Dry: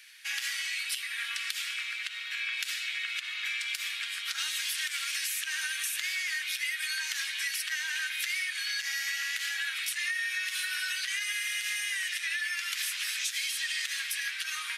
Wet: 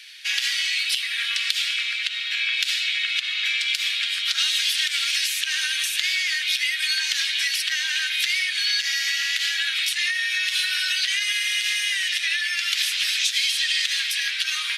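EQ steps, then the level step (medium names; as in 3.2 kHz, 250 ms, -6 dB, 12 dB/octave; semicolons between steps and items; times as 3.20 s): peaking EQ 3.7 kHz +13.5 dB 1.8 oct; 0.0 dB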